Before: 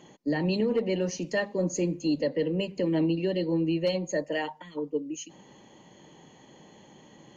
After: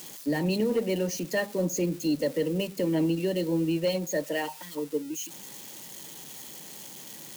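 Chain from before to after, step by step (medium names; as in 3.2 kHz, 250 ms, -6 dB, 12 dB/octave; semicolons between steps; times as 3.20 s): zero-crossing glitches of -32.5 dBFS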